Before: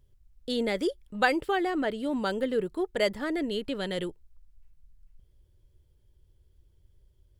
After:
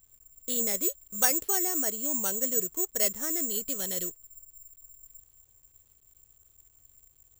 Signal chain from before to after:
log-companded quantiser 6 bits
bad sample-rate conversion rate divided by 6×, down none, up zero stuff
level −8 dB

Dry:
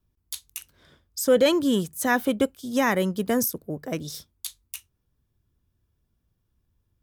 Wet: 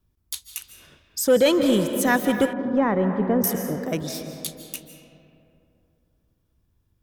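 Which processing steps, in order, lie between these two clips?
convolution reverb RT60 2.8 s, pre-delay 115 ms, DRR 7.5 dB
in parallel at −7.5 dB: hard clipping −23 dBFS, distortion −7 dB
0:02.53–0:03.44: on the sum: low-pass filter 1,200 Hz 12 dB per octave

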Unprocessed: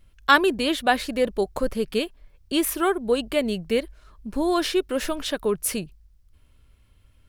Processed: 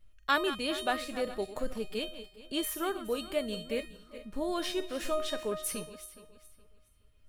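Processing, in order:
feedback delay that plays each chunk backwards 209 ms, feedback 51%, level −12.5 dB
tuned comb filter 620 Hz, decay 0.45 s, mix 90%
level +7.5 dB

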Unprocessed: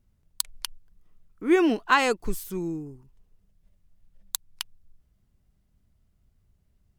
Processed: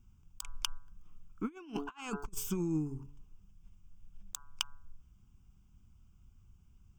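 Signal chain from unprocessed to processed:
phaser with its sweep stopped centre 2,800 Hz, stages 8
hum removal 142.4 Hz, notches 11
compressor whose output falls as the input rises −35 dBFS, ratio −0.5
level −1 dB

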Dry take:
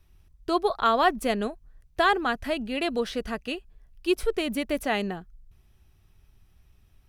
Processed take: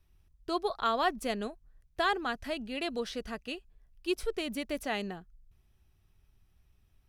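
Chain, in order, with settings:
dynamic equaliser 5,500 Hz, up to +5 dB, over −48 dBFS, Q 0.92
level −7.5 dB

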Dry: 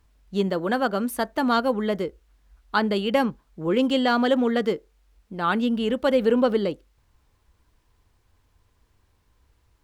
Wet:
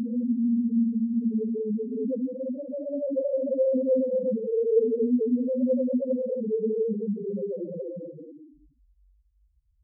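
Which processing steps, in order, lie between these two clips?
head-to-tape spacing loss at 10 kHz 32 dB
extreme stretch with random phases 7.2×, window 0.25 s, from 0:05.62
spectral peaks only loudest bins 2

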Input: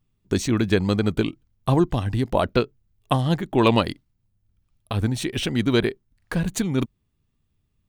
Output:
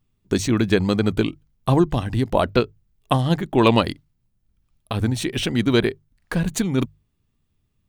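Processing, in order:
mains-hum notches 50/100/150 Hz
level +2 dB

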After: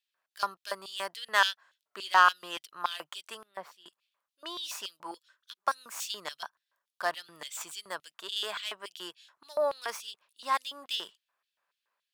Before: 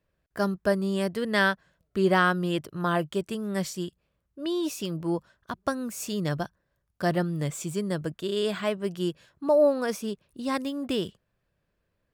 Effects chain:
stylus tracing distortion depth 0.066 ms
0:03.43–0:03.86: drawn EQ curve 720 Hz 0 dB, 7,300 Hz −25 dB, 11,000 Hz −18 dB
auto-filter high-pass square 3.5 Hz 990–3,400 Hz
0:05.11–0:05.59: phaser with its sweep stopped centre 320 Hz, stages 4
level −2 dB

